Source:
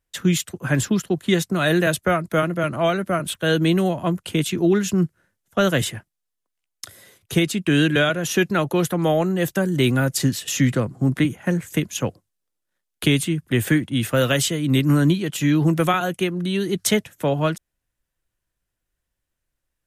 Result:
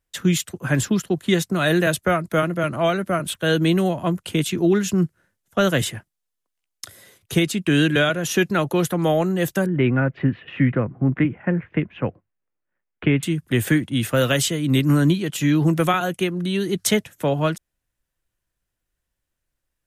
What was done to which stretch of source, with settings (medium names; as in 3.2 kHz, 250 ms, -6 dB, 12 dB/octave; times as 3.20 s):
9.66–13.23 s: steep low-pass 2.5 kHz